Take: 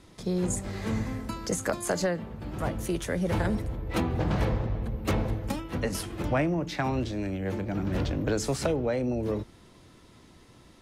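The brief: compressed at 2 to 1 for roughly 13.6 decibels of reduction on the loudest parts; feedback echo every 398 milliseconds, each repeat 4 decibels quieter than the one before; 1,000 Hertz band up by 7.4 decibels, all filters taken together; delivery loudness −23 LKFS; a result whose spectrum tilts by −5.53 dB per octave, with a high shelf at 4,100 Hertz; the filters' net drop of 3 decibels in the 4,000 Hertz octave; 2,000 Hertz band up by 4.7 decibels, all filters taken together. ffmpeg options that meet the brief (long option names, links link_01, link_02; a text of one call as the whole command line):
ffmpeg -i in.wav -af "equalizer=frequency=1000:width_type=o:gain=9,equalizer=frequency=2000:width_type=o:gain=3.5,equalizer=frequency=4000:width_type=o:gain=-9,highshelf=frequency=4100:gain=5,acompressor=threshold=-45dB:ratio=2,aecho=1:1:398|796|1194|1592|1990|2388|2786|3184|3582:0.631|0.398|0.25|0.158|0.0994|0.0626|0.0394|0.0249|0.0157,volume=15dB" out.wav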